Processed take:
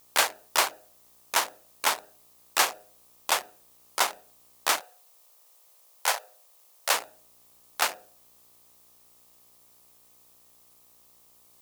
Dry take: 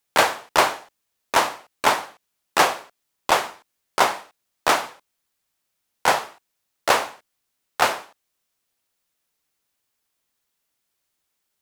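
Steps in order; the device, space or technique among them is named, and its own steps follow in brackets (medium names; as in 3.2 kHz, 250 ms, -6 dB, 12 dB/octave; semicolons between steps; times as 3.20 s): local Wiener filter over 41 samples; de-hum 104 Hz, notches 7; video cassette with head-switching buzz (mains buzz 60 Hz, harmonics 21, -56 dBFS -4 dB/octave; white noise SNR 36 dB); 4.80–6.94 s: Chebyshev high-pass 500 Hz, order 3; tilt EQ +3.5 dB/octave; trim -8 dB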